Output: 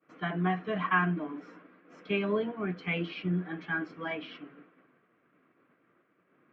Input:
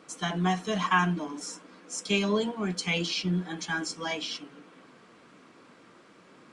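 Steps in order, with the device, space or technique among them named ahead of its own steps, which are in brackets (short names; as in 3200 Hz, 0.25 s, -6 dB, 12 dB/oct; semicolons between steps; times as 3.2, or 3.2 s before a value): expander -46 dBFS; bass cabinet (speaker cabinet 86–2300 Hz, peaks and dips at 210 Hz -5 dB, 500 Hz -3 dB, 900 Hz -9 dB)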